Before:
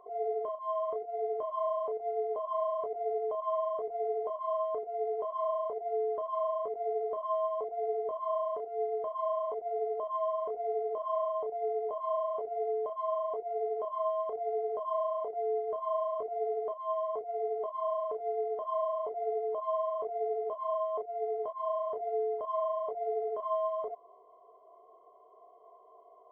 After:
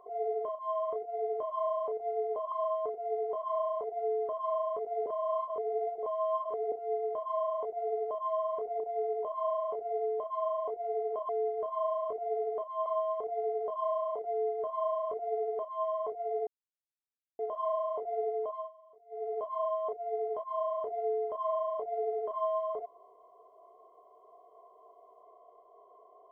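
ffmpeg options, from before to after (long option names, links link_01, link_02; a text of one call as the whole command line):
ffmpeg -i in.wav -filter_complex "[0:a]asplit=11[link_01][link_02][link_03][link_04][link_05][link_06][link_07][link_08][link_09][link_10][link_11];[link_01]atrim=end=2.522[link_12];[link_02]atrim=start=4.408:end=6.952[link_13];[link_03]atrim=start=6.948:end=8.612,asetpts=PTS-STARTPTS,areverse[link_14];[link_04]atrim=start=8.608:end=10.692[link_15];[link_05]atrim=start=11.458:end=13.952[link_16];[link_06]atrim=start=15.388:end=16.962[link_17];[link_07]atrim=start=13.948:end=17.56,asetpts=PTS-STARTPTS,afade=type=out:start_time=3.608:duration=0.004:curve=hsin[link_18];[link_08]atrim=start=17.56:end=18.48,asetpts=PTS-STARTPTS,volume=0[link_19];[link_09]atrim=start=18.48:end=19.8,asetpts=PTS-STARTPTS,afade=type=in:duration=0.004:curve=hsin,afade=type=out:start_time=0.96:duration=0.36:curve=qsin:silence=0.0630957[link_20];[link_10]atrim=start=19.8:end=20.17,asetpts=PTS-STARTPTS,volume=-24dB[link_21];[link_11]atrim=start=20.17,asetpts=PTS-STARTPTS,afade=type=in:duration=0.36:curve=qsin:silence=0.0630957[link_22];[link_12][link_13]acrossfade=duration=0.004:curve1=hsin:curve2=hsin[link_23];[link_23][link_14]acrossfade=duration=0.004:curve1=hsin:curve2=hsin[link_24];[link_24][link_15]acrossfade=duration=0.004:curve1=hsin:curve2=hsin[link_25];[link_25][link_16]acrossfade=duration=0.004:curve1=hsin:curve2=hsin[link_26];[link_26][link_17]acrossfade=duration=0.004:curve1=hsin:curve2=hsin[link_27];[link_18][link_19][link_20][link_21][link_22]concat=n=5:v=0:a=1[link_28];[link_27][link_28]acrossfade=duration=0.004:curve1=hsin:curve2=hsin" out.wav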